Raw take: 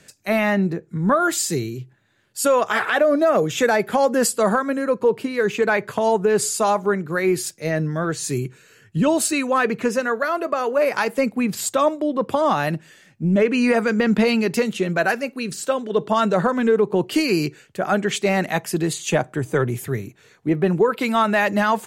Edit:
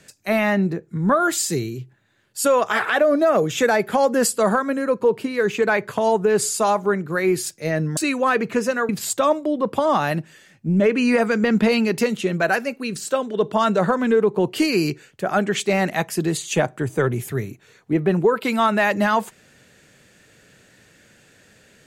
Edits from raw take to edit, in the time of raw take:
7.97–9.26 cut
10.18–11.45 cut

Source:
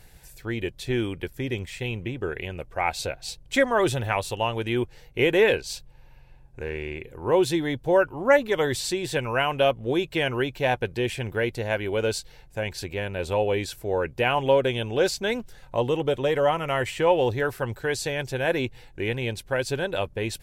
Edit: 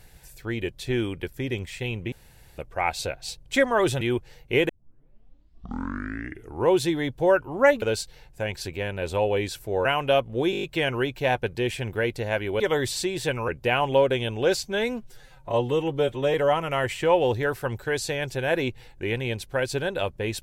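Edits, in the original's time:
2.12–2.58 room tone
4.01–4.67 cut
5.35 tape start 2.01 s
8.48–9.36 swap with 11.99–14.02
10.02 stutter 0.02 s, 7 plays
15.17–16.31 stretch 1.5×

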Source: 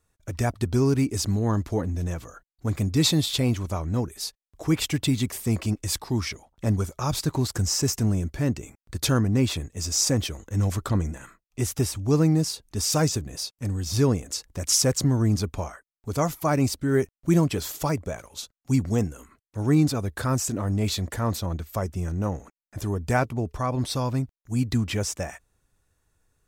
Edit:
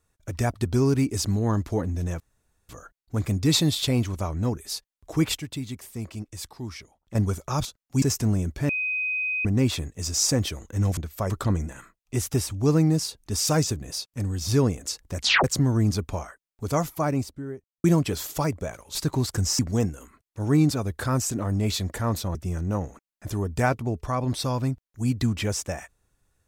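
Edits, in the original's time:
2.2 insert room tone 0.49 s
4.89–6.66 gain -9.5 dB
7.16–7.8 swap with 18.4–18.77
8.47–9.23 bleep 2510 Hz -24 dBFS
14.63 tape stop 0.26 s
16.19–17.29 studio fade out
21.53–21.86 move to 10.75

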